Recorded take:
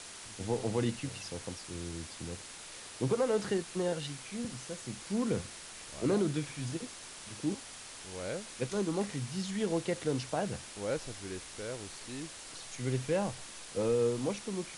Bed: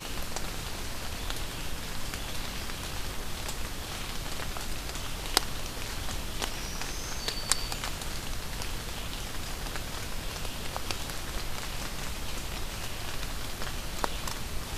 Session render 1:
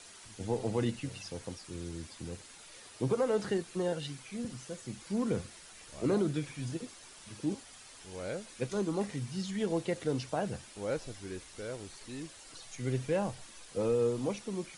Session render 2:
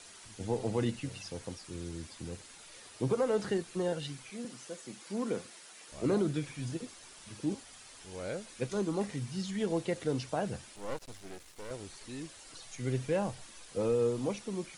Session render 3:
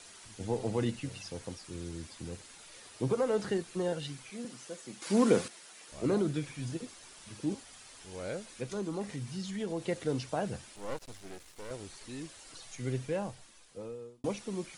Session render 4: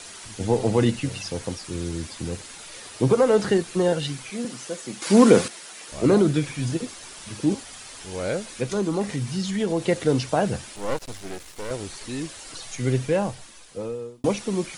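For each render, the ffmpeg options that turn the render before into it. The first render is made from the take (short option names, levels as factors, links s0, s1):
-af "afftdn=nr=8:nf=-48"
-filter_complex "[0:a]asettb=1/sr,asplit=3[s0][s1][s2];[s0]atrim=end=4.304[s3];[s1]atrim=start=4.3:end=5.92,asetpts=PTS-STARTPTS,afade=t=in:d=0.004:c=qsin,afade=t=out:st=1.616:d=0.004:c=qsin,highpass=250[s4];[s2]atrim=start=5.916[s5];[s3][s4]acrossfade=d=0.004:c1=hsin:c2=qsin[s6];[s6][s5]acrossfade=d=0.004:c1=qsin:c2=hsin,asettb=1/sr,asplit=3[s7][s8][s9];[s7]atrim=end=10.764[s10];[s8]atrim=start=10.76:end=11.71,asetpts=PTS-STARTPTS,afade=t=in:d=0.004:c=qsin,afade=t=out:st=0.946:d=0.004:c=qsin,aeval=exprs='max(val(0),0)':c=same[s11];[s9]atrim=start=11.706[s12];[s10][s11]acrossfade=d=0.004:c1=hsin:c2=qsin[s13];[s13][s12]acrossfade=d=0.004:c1=qsin:c2=hsin"
-filter_complex "[0:a]asettb=1/sr,asplit=3[s0][s1][s2];[s0]atrim=end=8.514[s3];[s1]atrim=start=8.51:end=9.82,asetpts=PTS-STARTPTS,afade=t=in:d=0.004:c=qsin,afade=t=out:st=1.306:d=0.004:c=qsin,acompressor=threshold=0.0141:ratio=1.5:attack=3.2:release=140:knee=1:detection=peak[s4];[s2]atrim=start=9.816[s5];[s3][s4]acrossfade=d=0.004:c1=hsin:c2=qsin[s6];[s6][s5]acrossfade=d=0.004:c1=qsin:c2=hsin,asplit=4[s7][s8][s9][s10];[s7]atrim=end=5.022[s11];[s8]atrim=start=5.018:end=5.482,asetpts=PTS-STARTPTS,volume=2.99[s12];[s9]atrim=start=5.478:end=14.24,asetpts=PTS-STARTPTS,afade=t=out:st=7.222:d=1.54[s13];[s10]atrim=start=14.24,asetpts=PTS-STARTPTS,afade=t=in:d=0.004:c=hsin[s14];[s11][s12]acrossfade=d=0.004:c1=hsin:c2=hsin[s15];[s13][s14]concat=n=2:v=0:a=1[s16];[s15][s16]acrossfade=d=0.004:c1=hsin:c2=hsin"
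-af "volume=3.76,alimiter=limit=0.708:level=0:latency=1"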